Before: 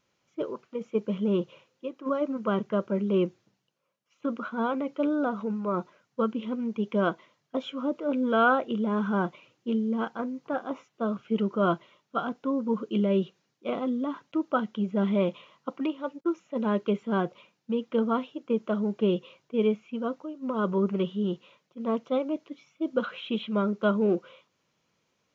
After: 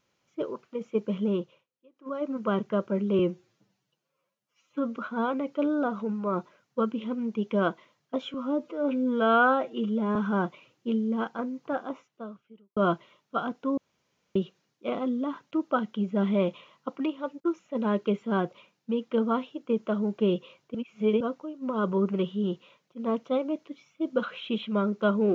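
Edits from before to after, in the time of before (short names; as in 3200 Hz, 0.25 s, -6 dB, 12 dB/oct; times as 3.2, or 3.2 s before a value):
1.24–2.36 dip -23.5 dB, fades 0.43 s
3.19–4.37 stretch 1.5×
7.75–8.96 stretch 1.5×
10.61–11.57 fade out quadratic
12.58–13.16 room tone
19.55–20.01 reverse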